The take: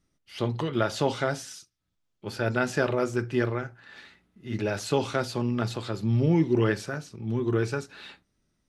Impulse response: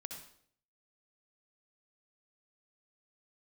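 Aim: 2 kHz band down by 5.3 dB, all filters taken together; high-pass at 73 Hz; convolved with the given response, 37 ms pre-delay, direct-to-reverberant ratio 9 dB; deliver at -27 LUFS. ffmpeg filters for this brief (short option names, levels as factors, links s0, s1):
-filter_complex "[0:a]highpass=73,equalizer=f=2000:t=o:g=-8,asplit=2[s0][s1];[1:a]atrim=start_sample=2205,adelay=37[s2];[s1][s2]afir=irnorm=-1:irlink=0,volume=0.501[s3];[s0][s3]amix=inputs=2:normalize=0,volume=1.12"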